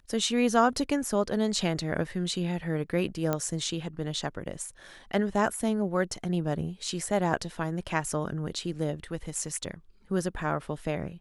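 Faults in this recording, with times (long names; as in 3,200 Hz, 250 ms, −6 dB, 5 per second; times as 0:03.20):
0:03.33: click −14 dBFS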